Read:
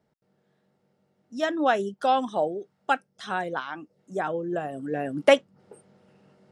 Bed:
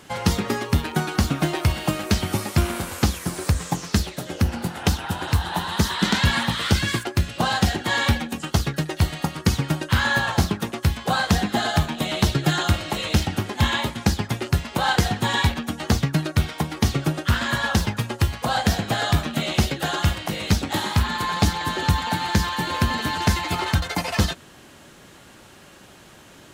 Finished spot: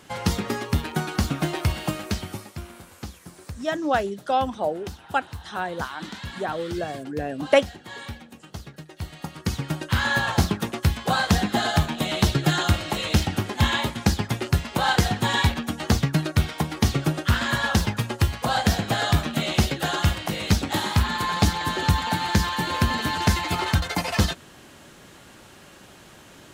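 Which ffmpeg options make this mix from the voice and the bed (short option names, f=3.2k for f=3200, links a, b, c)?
-filter_complex "[0:a]adelay=2250,volume=0dB[a];[1:a]volume=13dB,afade=t=out:st=1.81:d=0.73:silence=0.211349,afade=t=in:st=8.91:d=1.45:silence=0.158489[b];[a][b]amix=inputs=2:normalize=0"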